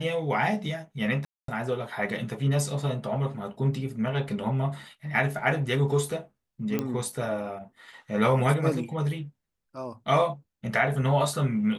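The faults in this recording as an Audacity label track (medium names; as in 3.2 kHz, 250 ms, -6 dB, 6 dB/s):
1.250000	1.480000	dropout 233 ms
6.790000	6.790000	pop -14 dBFS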